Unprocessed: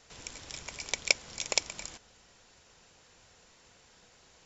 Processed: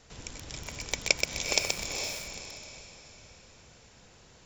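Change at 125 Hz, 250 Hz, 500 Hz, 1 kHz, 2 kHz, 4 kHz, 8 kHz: +10.0 dB, +8.0 dB, +5.0 dB, +3.5 dB, +2.5 dB, +3.0 dB, no reading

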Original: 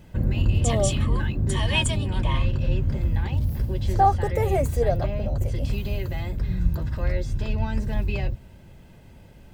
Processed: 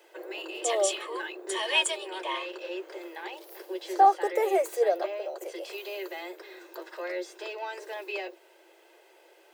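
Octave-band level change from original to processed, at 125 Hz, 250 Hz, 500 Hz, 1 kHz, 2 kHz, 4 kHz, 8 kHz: under -40 dB, -11.0 dB, -0.5 dB, 0.0 dB, 0.0 dB, -0.5 dB, -1.0 dB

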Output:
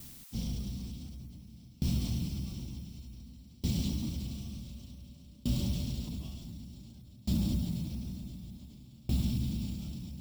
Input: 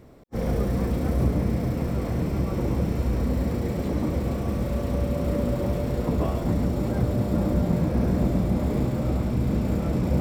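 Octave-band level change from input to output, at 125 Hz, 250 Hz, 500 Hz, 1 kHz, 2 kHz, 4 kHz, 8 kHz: -11.0 dB, -12.0 dB, -26.0 dB, -24.5 dB, -16.0 dB, +0.5 dB, -1.5 dB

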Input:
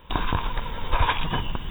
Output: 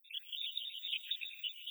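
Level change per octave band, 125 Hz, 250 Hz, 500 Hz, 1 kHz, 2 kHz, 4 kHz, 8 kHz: under -40 dB, under -40 dB, under -40 dB, under -40 dB, -16.0 dB, -3.5 dB, no reading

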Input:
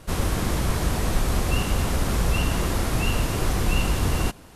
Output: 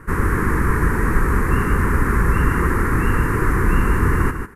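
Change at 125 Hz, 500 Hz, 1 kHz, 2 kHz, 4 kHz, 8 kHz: +5.5 dB, +5.5 dB, +8.0 dB, +9.5 dB, -12.5 dB, -5.5 dB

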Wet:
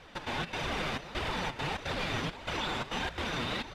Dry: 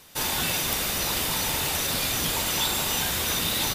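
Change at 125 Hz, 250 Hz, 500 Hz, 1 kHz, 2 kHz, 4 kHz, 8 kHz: -4.5 dB, -4.0 dB, -3.5 dB, -4.0 dB, -5.0 dB, -11.0 dB, -23.5 dB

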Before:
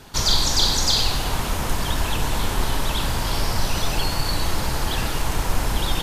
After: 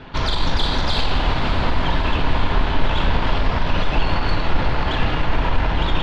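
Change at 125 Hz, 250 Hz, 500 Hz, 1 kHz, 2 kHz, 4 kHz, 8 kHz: +3.5 dB, +4.5 dB, +4.5 dB, +4.0 dB, +4.5 dB, -3.5 dB, -19.5 dB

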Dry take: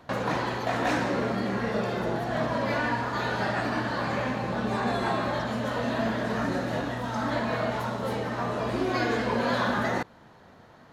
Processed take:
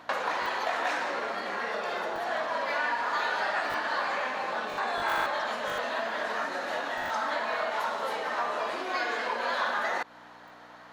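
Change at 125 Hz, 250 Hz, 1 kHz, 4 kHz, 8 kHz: -25.0 dB, -16.0 dB, +0.5 dB, +0.5 dB, -1.5 dB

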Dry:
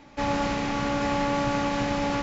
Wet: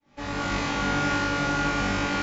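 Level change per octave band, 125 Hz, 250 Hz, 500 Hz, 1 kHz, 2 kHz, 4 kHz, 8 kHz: +1.0 dB, -1.5 dB, -4.0 dB, -0.5 dB, +5.0 dB, +3.0 dB, no reading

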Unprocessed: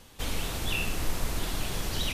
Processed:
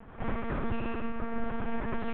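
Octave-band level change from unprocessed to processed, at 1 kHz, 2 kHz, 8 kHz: +2.0 dB, -5.5 dB, under -40 dB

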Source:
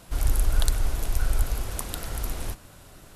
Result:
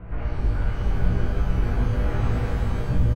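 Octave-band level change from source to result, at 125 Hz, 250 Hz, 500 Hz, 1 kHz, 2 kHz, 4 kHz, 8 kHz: +8.0 dB, +12.0 dB, +8.0 dB, +4.5 dB, +3.5 dB, -6.5 dB, under -15 dB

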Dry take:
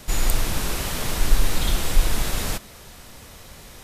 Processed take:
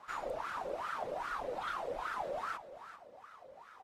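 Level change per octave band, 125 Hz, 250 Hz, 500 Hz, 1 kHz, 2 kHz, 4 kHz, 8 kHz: -32.5 dB, -21.0 dB, -5.0 dB, -3.5 dB, -11.0 dB, -23.5 dB, -31.5 dB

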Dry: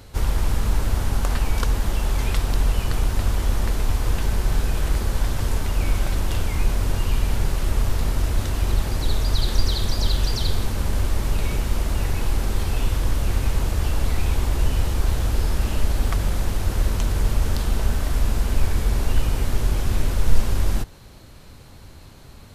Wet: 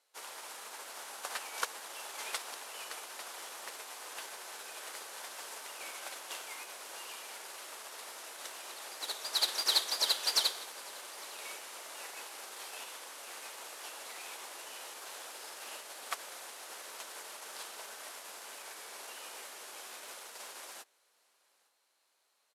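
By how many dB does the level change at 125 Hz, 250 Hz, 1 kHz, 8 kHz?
under -40 dB, -31.5 dB, -11.0 dB, -6.0 dB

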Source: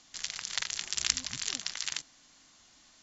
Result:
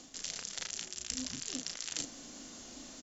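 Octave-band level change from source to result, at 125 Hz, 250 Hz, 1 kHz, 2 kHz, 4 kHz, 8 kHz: -1.5 dB, +8.5 dB, -6.0 dB, -9.0 dB, -7.0 dB, no reading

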